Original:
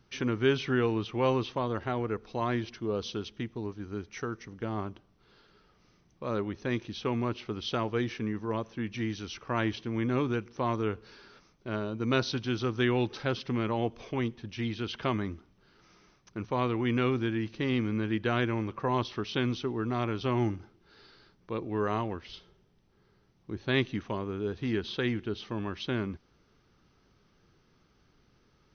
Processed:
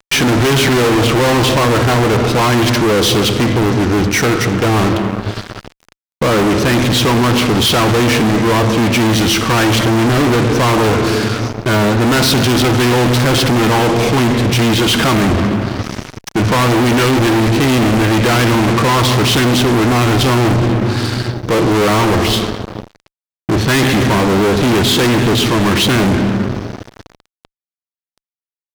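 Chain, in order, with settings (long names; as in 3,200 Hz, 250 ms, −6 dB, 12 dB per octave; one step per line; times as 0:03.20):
rectangular room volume 2,900 cubic metres, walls mixed, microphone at 0.63 metres
fuzz pedal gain 48 dB, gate −53 dBFS
level +2.5 dB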